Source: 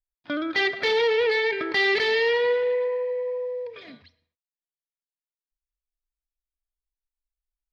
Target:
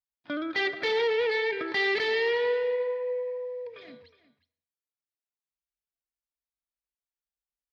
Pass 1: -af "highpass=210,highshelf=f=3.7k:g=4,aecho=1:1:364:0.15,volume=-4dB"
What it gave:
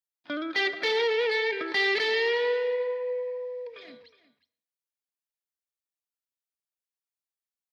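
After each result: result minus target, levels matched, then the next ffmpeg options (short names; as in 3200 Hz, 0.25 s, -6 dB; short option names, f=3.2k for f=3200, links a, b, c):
125 Hz band -7.5 dB; 8000 Hz band +4.5 dB
-af "highpass=78,highshelf=f=3.7k:g=4,aecho=1:1:364:0.15,volume=-4dB"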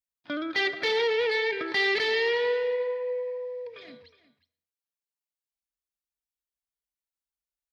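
8000 Hz band +4.0 dB
-af "highpass=78,highshelf=f=3.7k:g=-3,aecho=1:1:364:0.15,volume=-4dB"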